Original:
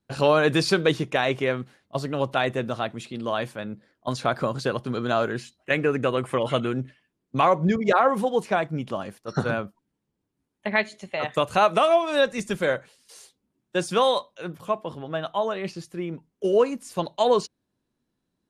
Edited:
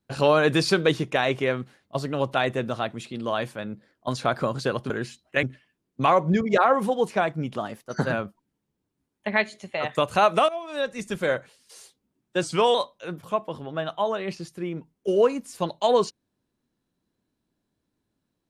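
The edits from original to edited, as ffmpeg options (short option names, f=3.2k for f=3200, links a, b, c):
-filter_complex "[0:a]asplit=8[a][b][c][d][e][f][g][h];[a]atrim=end=4.902[i];[b]atrim=start=5.238:end=5.772[j];[c]atrim=start=6.778:end=8.934[k];[d]atrim=start=8.93:end=9.52,asetpts=PTS-STARTPTS,asetrate=47628,aresample=44100[l];[e]atrim=start=9.516:end=11.88,asetpts=PTS-STARTPTS,afade=t=out:st=2.36:d=0.004:c=hsin:silence=0.141254[m];[f]atrim=start=11.88:end=13.824,asetpts=PTS-STARTPTS,afade=t=in:d=0.88:silence=0.141254[n];[g]atrim=start=13.82:end=14.11,asetpts=PTS-STARTPTS,asetrate=40131,aresample=44100[o];[h]atrim=start=14.106[p];[i][j]acrossfade=d=0.004:c1=hsin:c2=hsin[q];[q][k]acrossfade=d=0.004:c1=hsin:c2=hsin[r];[r][l]acrossfade=d=0.004:c1=hsin:c2=hsin[s];[m][n]concat=n=2:v=0:a=1[t];[s][t]acrossfade=d=0.004:c1=hsin:c2=hsin[u];[u][o]acrossfade=d=0.004:c1=hsin:c2=hsin[v];[v][p]acrossfade=d=0.004:c1=hsin:c2=hsin"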